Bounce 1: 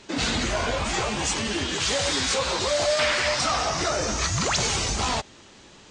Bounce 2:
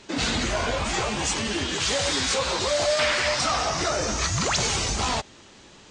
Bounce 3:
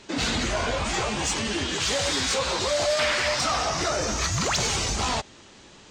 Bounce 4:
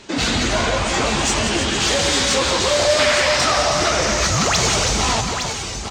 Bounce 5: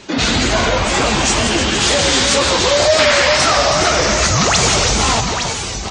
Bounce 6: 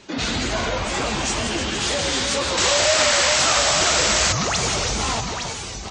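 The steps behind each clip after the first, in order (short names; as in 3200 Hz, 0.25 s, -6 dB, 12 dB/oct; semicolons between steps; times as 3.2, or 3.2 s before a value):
nothing audible
soft clip -14 dBFS, distortion -25 dB
tapped delay 0.173/0.317/0.861 s -8.5/-8.5/-7 dB; gain +6 dB
spectral gate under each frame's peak -30 dB strong; wow and flutter 73 cents; gain +4 dB
painted sound noise, 2.57–4.33, 490–8100 Hz -12 dBFS; gain -8.5 dB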